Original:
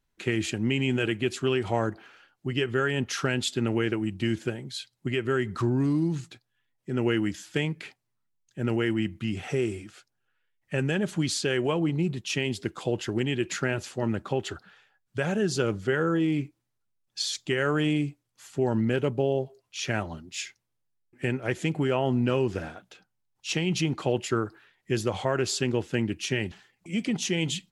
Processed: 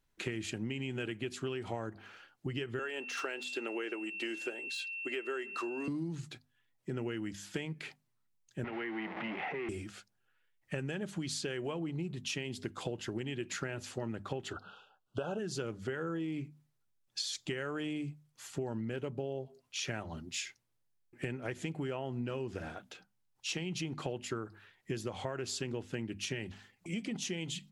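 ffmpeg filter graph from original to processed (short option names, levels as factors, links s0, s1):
-filter_complex "[0:a]asettb=1/sr,asplit=3[s0][s1][s2];[s0]atrim=end=2.794[s3];[s1]atrim=start=2.79:end=5.88,asetpts=PTS-STARTPTS,afade=t=in:d=0.004:c=qsin,afade=t=out:st=3.086:d=0.004:c=qsin,deesser=0.95,highpass=f=350:w=0.5412,highpass=f=350:w=1.3066,aeval=exprs='val(0)+0.0126*sin(2*PI*2700*n/s)':c=same[s4];[s2]atrim=start=5.876[s5];[s3][s4]acrossfade=d=0.004:c1=hsin:c2=qsin[s6];[s6][s5]acrossfade=d=0.004:c1=qsin:c2=hsin,asettb=1/sr,asplit=3[s7][s8][s9];[s7]atrim=end=8.644[s10];[s8]atrim=start=8.64:end=9.69,asetpts=PTS-STARTPTS,afade=t=in:d=0.004:c=qsin,afade=t=out:st=1.046:d=0.004:c=qsin,aeval=exprs='val(0)+0.5*0.0376*sgn(val(0))':c=same,acrossover=split=390|1100[s11][s12][s13];[s11]acompressor=threshold=0.0112:ratio=4[s14];[s12]acompressor=threshold=0.0112:ratio=4[s15];[s13]acompressor=threshold=0.01:ratio=4[s16];[s14][s15][s16]amix=inputs=3:normalize=0,highpass=f=180:w=0.5412,highpass=f=180:w=1.3066,equalizer=f=480:t=q:w=4:g=-3,equalizer=f=830:t=q:w=4:g=6,equalizer=f=2000:t=q:w=4:g=8,lowpass=f=2900:w=0.5412,lowpass=f=2900:w=1.3066[s17];[s9]atrim=start=9.686[s18];[s10][s17]acrossfade=d=0.004:c1=hsin:c2=qsin[s19];[s19][s18]acrossfade=d=0.004:c1=qsin:c2=hsin,asettb=1/sr,asplit=3[s20][s21][s22];[s20]atrim=end=14.534[s23];[s21]atrim=start=14.53:end=15.39,asetpts=PTS-STARTPTS,afade=t=in:d=0.004:c=qsin,afade=t=out:st=0.856:d=0.004:c=qsin,bass=f=250:g=-10,treble=f=4000:g=-14,acontrast=65,asuperstop=centerf=2000:order=12:qfactor=1.8[s24];[s22]atrim=start=15.386[s25];[s23][s24]acrossfade=d=0.004:c1=hsin:c2=qsin[s26];[s26][s25]acrossfade=d=0.004:c1=qsin:c2=hsin,bandreject=f=50:t=h:w=6,bandreject=f=100:t=h:w=6,bandreject=f=150:t=h:w=6,bandreject=f=200:t=h:w=6,bandreject=f=250:t=h:w=6,acompressor=threshold=0.0178:ratio=6"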